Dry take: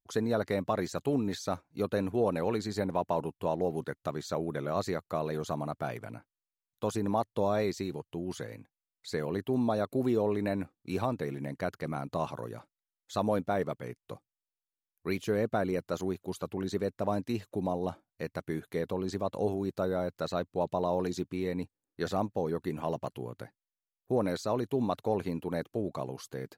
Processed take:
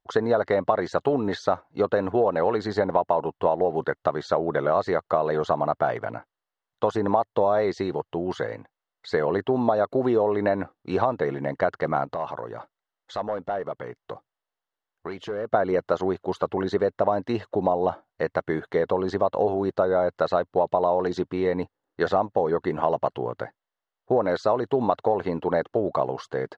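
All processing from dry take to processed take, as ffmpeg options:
-filter_complex "[0:a]asettb=1/sr,asplit=3[s0][s1][s2];[s0]atrim=end=12.044[s3];[s1]atrim=start=12.04:end=15.54,asetpts=PTS-STARTPTS,afade=t=in:d=0.004:c=qsin,afade=t=out:st=3.496:d=0.004:c=qsin,volume=13.3,asoftclip=hard,volume=0.075,acompressor=threshold=0.00794:ratio=3:attack=3.2:release=140:knee=1:detection=peak[s4];[s2]atrim=start=15.536[s5];[s3][s4]acrossfade=d=0.004:c1=hsin:c2=qsin[s6];[s6][s5]acrossfade=d=0.004:c1=qsin:c2=hsin,firequalizer=gain_entry='entry(230,0);entry(440,8);entry(690,12);entry(12000,-28)':delay=0.05:min_phase=1,acompressor=threshold=0.0794:ratio=6,bandreject=f=2400:w=5.2,volume=1.68"

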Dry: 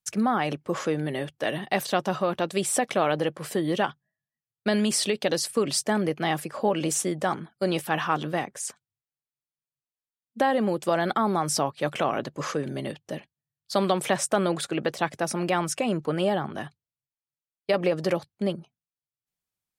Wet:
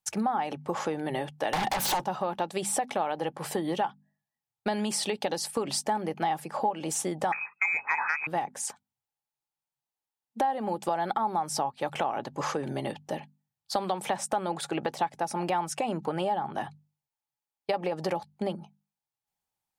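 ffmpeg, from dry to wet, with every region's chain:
-filter_complex "[0:a]asettb=1/sr,asplit=3[s0][s1][s2];[s0]atrim=end=1.534[s3];[s1]atrim=start=1.53:end=2.04,asetpts=PTS-STARTPTS,afade=t=in:d=0.004:c=qsin,afade=t=out:st=0.506:d=0.004:c=qsin,acompressor=threshold=0.0316:ratio=12:attack=3.2:release=140:knee=1:detection=peak,aeval=exprs='0.119*sin(PI/2*7.94*val(0)/0.119)':c=same[s4];[s2]atrim=start=2.036[s5];[s3][s4]acrossfade=d=0.004:c1=hsin:c2=qsin[s6];[s6][s5]acrossfade=d=0.004:c1=qsin:c2=hsin,asettb=1/sr,asplit=3[s7][s8][s9];[s7]atrim=end=7.324[s10];[s8]atrim=start=7.32:end=8.27,asetpts=PTS-STARTPTS,afade=t=in:d=0.004:c=qsin,afade=t=out:st=0.946:d=0.004:c=qsin,lowpass=f=2300:t=q:w=0.5098,lowpass=f=2300:t=q:w=0.6013,lowpass=f=2300:t=q:w=0.9,lowpass=f=2300:t=q:w=2.563,afreqshift=-2700,acontrast=68,aemphasis=mode=production:type=bsi[s11];[s9]atrim=start=8.266[s12];[s10][s11]acrossfade=d=0.004:c1=hsin:c2=qsin[s13];[s13][s12]acrossfade=d=0.004:c1=qsin:c2=hsin,equalizer=f=840:w=4:g=15,bandreject=f=50:t=h:w=6,bandreject=f=100:t=h:w=6,bandreject=f=150:t=h:w=6,bandreject=f=200:t=h:w=6,bandreject=f=250:t=h:w=6,acompressor=threshold=0.0447:ratio=4"

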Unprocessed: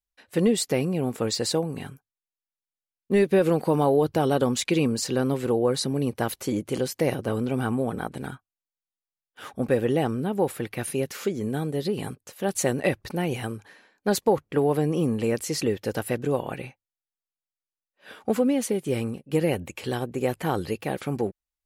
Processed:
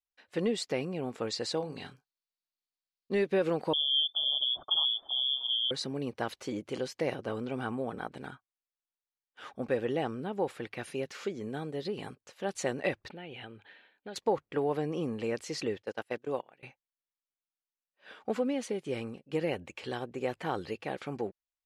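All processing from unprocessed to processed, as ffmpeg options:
-filter_complex "[0:a]asettb=1/sr,asplit=3[s0][s1][s2];[s0]atrim=end=1.574[s3];[s1]atrim=start=1.57:end=3.15,asetpts=PTS-STARTPTS,afade=t=in:d=0.004:c=qsin,afade=t=out:st=1.576:d=0.004:c=qsin,equalizer=f=4400:w=2.1:g=12,asplit=2[s4][s5];[s5]adelay=32,volume=0.335[s6];[s4][s6]amix=inputs=2:normalize=0,atrim=end_sample=69678[s7];[s2]atrim=start=3.146[s8];[s3][s7]acrossfade=d=0.004:c1=hsin:c2=qsin[s9];[s9][s8]acrossfade=d=0.004:c1=qsin:c2=hsin,asettb=1/sr,asplit=3[s10][s11][s12];[s10]atrim=end=3.734[s13];[s11]atrim=start=3.73:end=5.71,asetpts=PTS-STARTPTS,afade=t=in:d=0.004:c=qsin,afade=t=out:st=1.976:d=0.004:c=qsin,asuperstop=centerf=1100:order=12:qfactor=0.5,lowpass=f=3100:t=q:w=0.5098,lowpass=f=3100:t=q:w=0.6013,lowpass=f=3100:t=q:w=0.9,lowpass=f=3100:t=q:w=2.563,afreqshift=-3600[s14];[s12]atrim=start=5.706[s15];[s13][s14]acrossfade=d=0.004:c1=hsin:c2=qsin[s16];[s16][s15]acrossfade=d=0.004:c1=qsin:c2=hsin,asettb=1/sr,asplit=3[s17][s18][s19];[s17]atrim=end=13.084[s20];[s18]atrim=start=13.08:end=14.16,asetpts=PTS-STARTPTS,afade=t=in:d=0.004:c=qsin,afade=t=out:st=1.076:d=0.004:c=qsin,highshelf=f=4400:t=q:w=3:g=-9,bandreject=f=1100:w=5.9,acompressor=threshold=0.0158:ratio=2.5:attack=3.2:release=140:knee=1:detection=peak[s21];[s19]atrim=start=14.156[s22];[s20][s21]acrossfade=d=0.004:c1=hsin:c2=qsin[s23];[s23][s22]acrossfade=d=0.004:c1=qsin:c2=hsin,asettb=1/sr,asplit=3[s24][s25][s26];[s24]atrim=end=15.824[s27];[s25]atrim=start=15.82:end=16.63,asetpts=PTS-STARTPTS,afade=t=in:d=0.004:c=qsin,afade=t=out:st=0.806:d=0.004:c=qsin,agate=range=0.0794:threshold=0.0355:ratio=16:release=100:detection=peak,highpass=f=210:p=1[s28];[s26]atrim=start=16.626[s29];[s27][s28]acrossfade=d=0.004:c1=hsin:c2=qsin[s30];[s30][s29]acrossfade=d=0.004:c1=qsin:c2=hsin,lowpass=5200,lowshelf=f=260:g=-9.5,volume=0.562"

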